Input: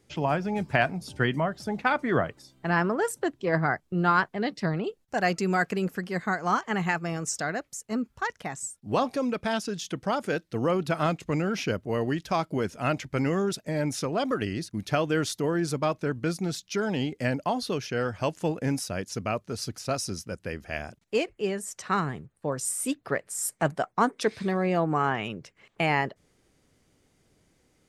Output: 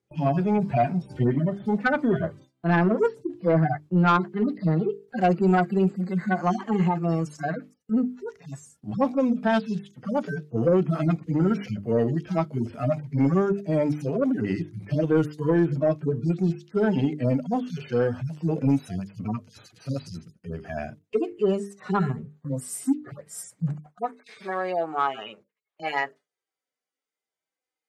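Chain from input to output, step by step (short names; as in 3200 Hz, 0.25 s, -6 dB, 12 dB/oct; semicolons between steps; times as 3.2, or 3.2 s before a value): median-filter separation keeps harmonic; HPF 140 Hz 12 dB/oct, from 23.86 s 770 Hz; notches 50/100/150/200/250/300/350/400/450 Hz; gate with hold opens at -48 dBFS; tilt -1.5 dB/oct; soft clip -18 dBFS, distortion -19 dB; gain +6.5 dB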